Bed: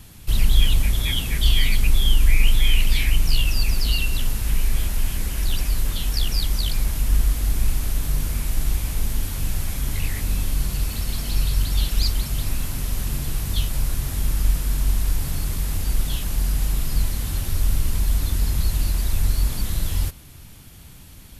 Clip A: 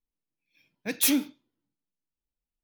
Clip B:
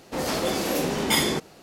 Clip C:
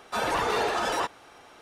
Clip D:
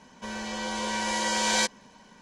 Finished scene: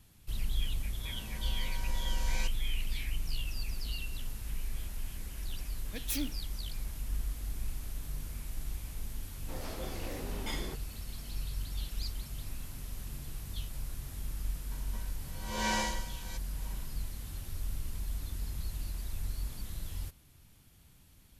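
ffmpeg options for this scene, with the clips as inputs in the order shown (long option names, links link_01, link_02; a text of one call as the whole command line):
ffmpeg -i bed.wav -i cue0.wav -i cue1.wav -i cue2.wav -i cue3.wav -filter_complex "[4:a]asplit=2[link_01][link_02];[0:a]volume=-16.5dB[link_03];[2:a]equalizer=frequency=13000:width_type=o:width=0.77:gain=-13.5[link_04];[link_02]aeval=exprs='val(0)*pow(10,-26*(0.5-0.5*cos(2*PI*1*n/s))/20)':channel_layout=same[link_05];[link_01]atrim=end=2.21,asetpts=PTS-STARTPTS,volume=-17.5dB,afade=type=in:duration=0.004:curve=hsin,afade=type=out:start_time=2.206:duration=0.004:curve=hsin,adelay=810[link_06];[1:a]atrim=end=2.63,asetpts=PTS-STARTPTS,volume=-12.5dB,afade=type=in:duration=0.004:curve=hsin,afade=type=out:start_time=2.626:duration=0.004:curve=hsin,adelay=5070[link_07];[link_04]atrim=end=1.62,asetpts=PTS-STARTPTS,volume=-17dB,afade=type=in:duration=0.004:curve=hsin,afade=type=out:start_time=1.616:duration=0.004:curve=hsin,adelay=9360[link_08];[link_05]atrim=end=2.21,asetpts=PTS-STARTPTS,volume=-1dB,afade=type=in:duration=0.004:curve=hsin,afade=type=out:start_time=2.206:duration=0.004:curve=hsin,adelay=14710[link_09];[link_03][link_06][link_07][link_08][link_09]amix=inputs=5:normalize=0" out.wav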